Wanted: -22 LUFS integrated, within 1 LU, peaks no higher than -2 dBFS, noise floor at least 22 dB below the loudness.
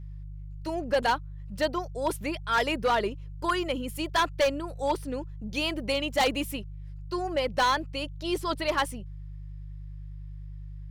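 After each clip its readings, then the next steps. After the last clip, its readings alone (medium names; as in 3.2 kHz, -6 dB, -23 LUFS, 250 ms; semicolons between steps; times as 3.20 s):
clipped samples 1.0%; clipping level -19.0 dBFS; hum 50 Hz; highest harmonic 150 Hz; hum level -38 dBFS; loudness -29.0 LUFS; peak level -19.0 dBFS; loudness target -22.0 LUFS
-> clip repair -19 dBFS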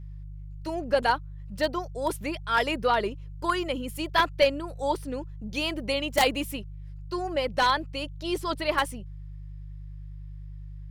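clipped samples 0.0%; hum 50 Hz; highest harmonic 150 Hz; hum level -37 dBFS
-> de-hum 50 Hz, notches 3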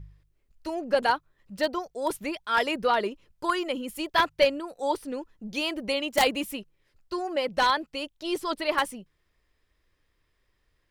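hum not found; loudness -28.0 LUFS; peak level -9.5 dBFS; loudness target -22.0 LUFS
-> trim +6 dB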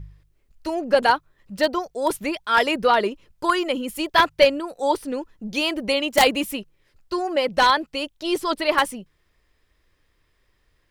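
loudness -22.0 LUFS; peak level -3.5 dBFS; noise floor -67 dBFS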